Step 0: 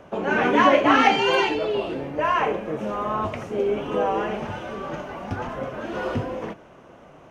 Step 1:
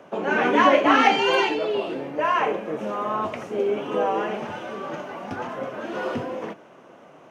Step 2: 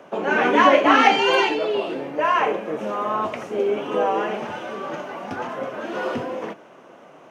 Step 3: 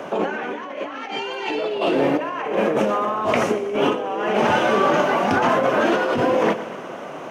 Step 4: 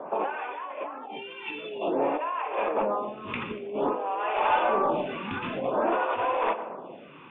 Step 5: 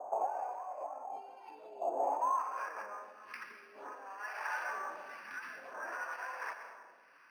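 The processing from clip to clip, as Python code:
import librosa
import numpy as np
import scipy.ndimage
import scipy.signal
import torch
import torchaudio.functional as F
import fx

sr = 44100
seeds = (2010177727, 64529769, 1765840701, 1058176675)

y1 = scipy.signal.sosfilt(scipy.signal.butter(2, 190.0, 'highpass', fs=sr, output='sos'), x)
y2 = fx.low_shelf(y1, sr, hz=140.0, db=-7.0)
y2 = y2 * librosa.db_to_amplitude(2.5)
y3 = fx.over_compress(y2, sr, threshold_db=-30.0, ratio=-1.0)
y3 = fx.echo_feedback(y3, sr, ms=119, feedback_pct=60, wet_db=-15.0)
y3 = y3 * librosa.db_to_amplitude(7.0)
y4 = np.minimum(y3, 2.0 * 10.0 ** (-12.0 / 20.0) - y3)
y4 = scipy.signal.sosfilt(scipy.signal.cheby1(6, 9, 3600.0, 'lowpass', fs=sr, output='sos'), y4)
y4 = fx.stagger_phaser(y4, sr, hz=0.52)
y5 = fx.filter_sweep_bandpass(y4, sr, from_hz=740.0, to_hz=1700.0, start_s=2.03, end_s=2.73, q=6.3)
y5 = fx.rev_plate(y5, sr, seeds[0], rt60_s=1.1, hf_ratio=0.95, predelay_ms=115, drr_db=8.0)
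y5 = np.interp(np.arange(len(y5)), np.arange(len(y5))[::6], y5[::6])
y5 = y5 * librosa.db_to_amplitude(1.0)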